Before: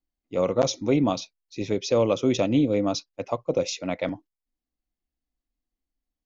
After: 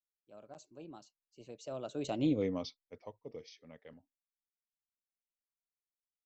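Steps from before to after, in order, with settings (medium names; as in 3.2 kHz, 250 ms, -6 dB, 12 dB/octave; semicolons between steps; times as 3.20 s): Doppler pass-by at 2.34 s, 44 m/s, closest 7.4 m; trim -8.5 dB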